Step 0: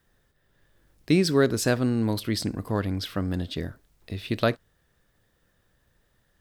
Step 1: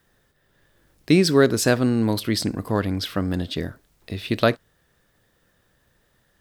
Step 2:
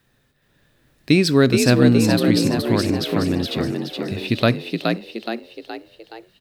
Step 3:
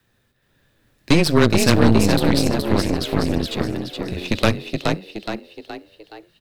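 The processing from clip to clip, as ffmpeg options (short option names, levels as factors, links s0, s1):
-af "lowshelf=f=80:g=-7.5,volume=1.78"
-filter_complex "[0:a]equalizer=f=125:t=o:w=0.33:g=9,equalizer=f=250:t=o:w=0.33:g=7,equalizer=f=2500:t=o:w=0.33:g=7,equalizer=f=4000:t=o:w=0.33:g=5,asplit=7[s0][s1][s2][s3][s4][s5][s6];[s1]adelay=421,afreqshift=54,volume=0.631[s7];[s2]adelay=842,afreqshift=108,volume=0.316[s8];[s3]adelay=1263,afreqshift=162,volume=0.158[s9];[s4]adelay=1684,afreqshift=216,volume=0.0785[s10];[s5]adelay=2105,afreqshift=270,volume=0.0394[s11];[s6]adelay=2526,afreqshift=324,volume=0.0197[s12];[s0][s7][s8][s9][s10][s11][s12]amix=inputs=7:normalize=0,volume=0.891"
-af "afreqshift=-16,aeval=exprs='0.891*(cos(1*acos(clip(val(0)/0.891,-1,1)))-cos(1*PI/2))+0.178*(cos(4*acos(clip(val(0)/0.891,-1,1)))-cos(4*PI/2))+0.282*(cos(6*acos(clip(val(0)/0.891,-1,1)))-cos(6*PI/2))':c=same,volume=0.841"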